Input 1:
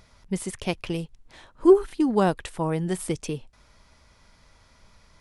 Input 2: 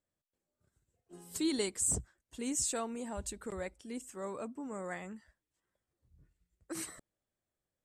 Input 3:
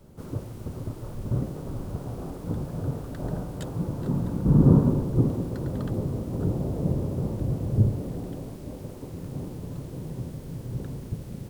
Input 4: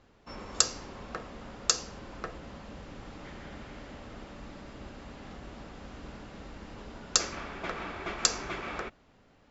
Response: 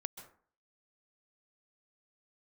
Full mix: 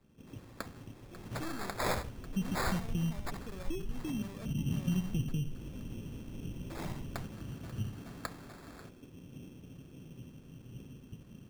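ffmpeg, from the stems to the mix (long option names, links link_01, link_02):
-filter_complex "[0:a]bass=frequency=250:gain=14,treble=frequency=4000:gain=-13,acompressor=threshold=-27dB:ratio=2,adelay=2050,volume=-4dB,asplit=3[link_01][link_02][link_03];[link_01]atrim=end=4.22,asetpts=PTS-STARTPTS,afade=type=out:start_time=4.216:duration=0.004:curve=hsin[link_04];[link_02]atrim=start=4.22:end=4.87,asetpts=PTS-STARTPTS,volume=0[link_05];[link_03]atrim=start=4.87,asetpts=PTS-STARTPTS,afade=type=in:duration=0.004:curve=hsin[link_06];[link_04][link_05][link_06]concat=n=3:v=0:a=1,asplit=2[link_07][link_08];[link_08]volume=-12.5dB[link_09];[1:a]aeval=exprs='(tanh(20*val(0)+0.5)-tanh(0.5))/20':channel_layout=same,volume=0dB,asplit=3[link_10][link_11][link_12];[link_11]volume=-8.5dB[link_13];[link_12]volume=-6dB[link_14];[2:a]equalizer=frequency=250:width_type=o:width=1:gain=7,equalizer=frequency=1000:width_type=o:width=1:gain=-10,equalizer=frequency=2000:width_type=o:width=1:gain=-3,equalizer=frequency=4000:width_type=o:width=1:gain=9,volume=-20dB,asplit=2[link_15][link_16];[link_16]volume=-6.5dB[link_17];[3:a]volume=-18.5dB,asplit=2[link_18][link_19];[link_19]volume=-7.5dB[link_20];[4:a]atrim=start_sample=2205[link_21];[link_13][link_17][link_20]amix=inputs=3:normalize=0[link_22];[link_22][link_21]afir=irnorm=-1:irlink=0[link_23];[link_09][link_14]amix=inputs=2:normalize=0,aecho=0:1:73|146|219:1|0.15|0.0225[link_24];[link_07][link_10][link_15][link_18][link_23][link_24]amix=inputs=6:normalize=0,acrossover=split=200|3000[link_25][link_26][link_27];[link_26]acompressor=threshold=-47dB:ratio=6[link_28];[link_25][link_28][link_27]amix=inputs=3:normalize=0,acrusher=samples=15:mix=1:aa=0.000001"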